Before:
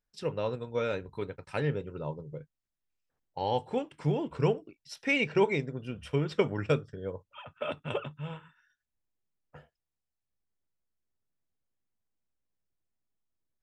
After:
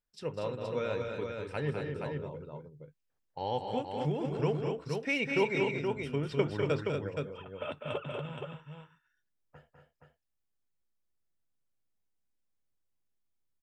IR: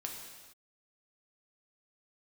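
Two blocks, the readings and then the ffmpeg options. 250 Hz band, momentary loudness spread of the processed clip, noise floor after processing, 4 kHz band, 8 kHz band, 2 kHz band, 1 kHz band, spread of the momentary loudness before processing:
-1.5 dB, 14 LU, -81 dBFS, -1.5 dB, n/a, -1.5 dB, -1.5 dB, 14 LU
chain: -af "aecho=1:1:200|236|472:0.447|0.501|0.562,volume=-4dB"

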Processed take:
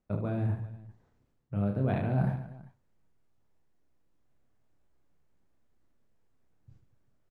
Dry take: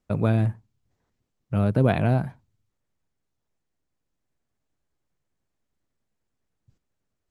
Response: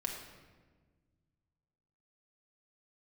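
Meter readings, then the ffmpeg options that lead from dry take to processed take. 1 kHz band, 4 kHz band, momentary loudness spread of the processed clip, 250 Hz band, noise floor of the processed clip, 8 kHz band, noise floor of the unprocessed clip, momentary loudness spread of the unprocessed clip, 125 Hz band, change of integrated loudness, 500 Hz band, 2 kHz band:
-8.5 dB, under -10 dB, 17 LU, -7.0 dB, -72 dBFS, n/a, -80 dBFS, 8 LU, -7.0 dB, -8.5 dB, -9.0 dB, -10.5 dB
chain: -af "highshelf=f=2.5k:g=-10.5,areverse,acompressor=threshold=-31dB:ratio=20,areverse,aecho=1:1:30|75|142.5|243.8|395.6:0.631|0.398|0.251|0.158|0.1,volume=4dB"

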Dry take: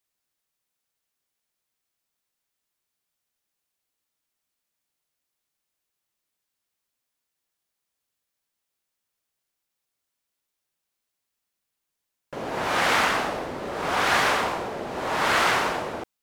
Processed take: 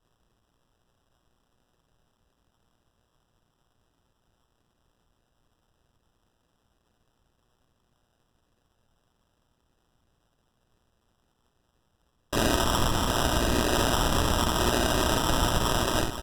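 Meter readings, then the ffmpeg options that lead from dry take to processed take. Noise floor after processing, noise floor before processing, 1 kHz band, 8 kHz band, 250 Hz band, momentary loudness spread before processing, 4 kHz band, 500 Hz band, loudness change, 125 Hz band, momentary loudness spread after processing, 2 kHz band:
-74 dBFS, -83 dBFS, -3.5 dB, +5.0 dB, +6.0 dB, 12 LU, +1.5 dB, 0.0 dB, -1.5 dB, +11.0 dB, 2 LU, -7.0 dB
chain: -filter_complex "[0:a]highshelf=f=11k:g=-9,aecho=1:1:3.1:0.95,acontrast=77,asoftclip=type=tanh:threshold=-17.5dB,acrossover=split=270[a][b];[b]acompressor=threshold=-25dB:ratio=2.5[c];[a][c]amix=inputs=2:normalize=0,asplit=2[d][e];[e]aecho=0:1:41|42|58|489:0.15|0.398|0.501|0.282[f];[d][f]amix=inputs=2:normalize=0,acrusher=samples=20:mix=1:aa=0.000001,aemphasis=mode=reproduction:type=bsi,crystalizer=i=6:c=0,alimiter=limit=-10dB:level=0:latency=1:release=318,tremolo=f=120:d=0.71"

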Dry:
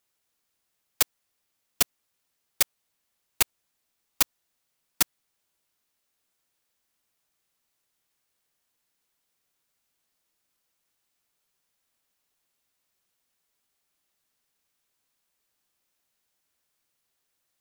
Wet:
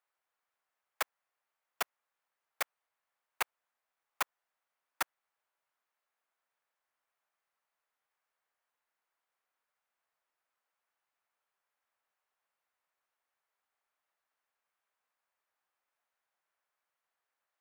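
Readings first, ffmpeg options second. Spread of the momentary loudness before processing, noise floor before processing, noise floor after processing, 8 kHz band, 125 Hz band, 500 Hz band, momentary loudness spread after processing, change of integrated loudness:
0 LU, -78 dBFS, under -85 dBFS, -17.0 dB, under -20 dB, -5.5 dB, 1 LU, -12.5 dB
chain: -filter_complex "[0:a]acrossover=split=570 2000:gain=0.0794 1 0.126[a][b][c];[a][b][c]amix=inputs=3:normalize=0,volume=1dB"

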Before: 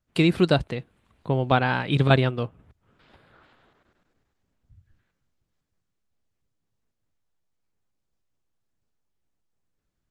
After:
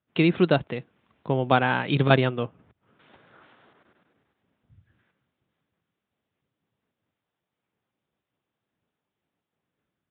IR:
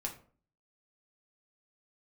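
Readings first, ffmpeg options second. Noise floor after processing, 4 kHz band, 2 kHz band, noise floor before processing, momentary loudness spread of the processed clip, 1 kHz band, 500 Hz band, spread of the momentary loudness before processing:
under -85 dBFS, -1.5 dB, +0.5 dB, -79 dBFS, 15 LU, +0.5 dB, +0.5 dB, 15 LU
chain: -af "aresample=8000,aresample=44100,highpass=140,dynaudnorm=f=810:g=3:m=6dB"

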